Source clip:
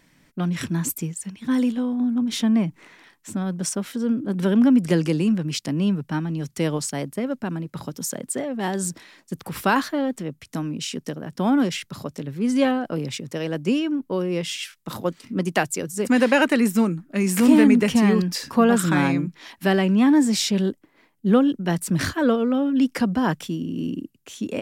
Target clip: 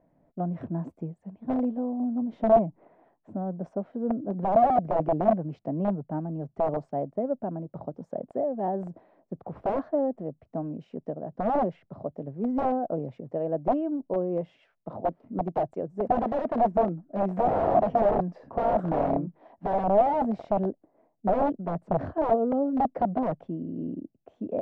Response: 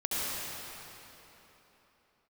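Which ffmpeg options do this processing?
-af "aeval=exprs='(mod(5.31*val(0)+1,2)-1)/5.31':c=same,lowpass=f=670:t=q:w=4.9,volume=-7.5dB"

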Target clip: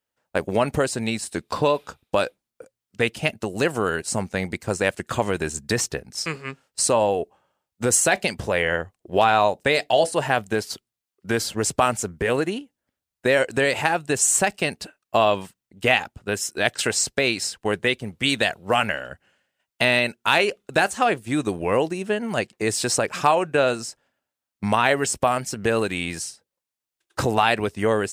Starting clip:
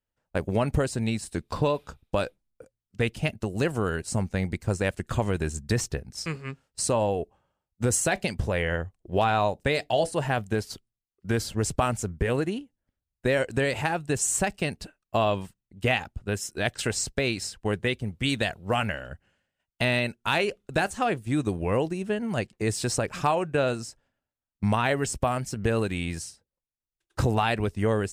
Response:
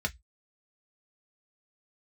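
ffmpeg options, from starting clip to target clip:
-af "highpass=f=370:p=1,volume=7dB"

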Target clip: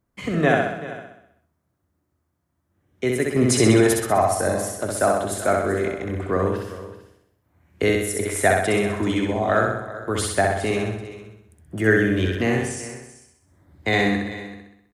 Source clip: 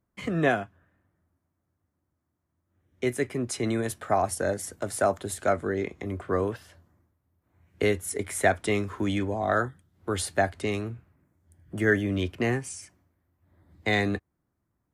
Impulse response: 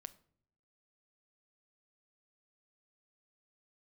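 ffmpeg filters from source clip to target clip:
-filter_complex "[0:a]asplit=2[a][b];[b]aecho=0:1:386:0.168[c];[a][c]amix=inputs=2:normalize=0,asettb=1/sr,asplit=3[d][e][f];[d]atrim=end=3.364[g];[e]atrim=start=3.36:end=3.98,asetpts=PTS-STARTPTS,afade=t=in:d=0.004:c=qsin,afade=t=out:st=0.616:d=0.004:c=qsin,acontrast=84[h];[f]atrim=start=3.976[i];[g][h]acrossfade=d=0.004:c1=hsin:c2=qsin[j];[j][i]acrossfade=d=0.004:c1=qsin:c2=hsin,asplit=2[k][l];[l]aecho=0:1:64|128|192|256|320|384|448|512:0.708|0.396|0.222|0.124|0.0696|0.039|0.0218|0.0122[m];[k][m]amix=inputs=2:normalize=0,volume=3.5dB"

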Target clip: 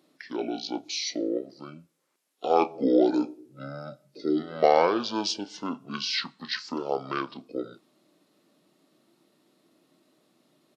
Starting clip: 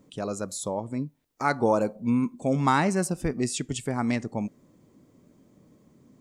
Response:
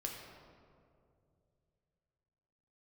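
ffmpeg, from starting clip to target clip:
-filter_complex "[0:a]highpass=f=500:w=0.5412,highpass=f=500:w=1.3066,asplit=2[a][b];[b]adelay=17,volume=-13.5dB[c];[a][c]amix=inputs=2:normalize=0,asetrate=25442,aresample=44100,volume=3dB"

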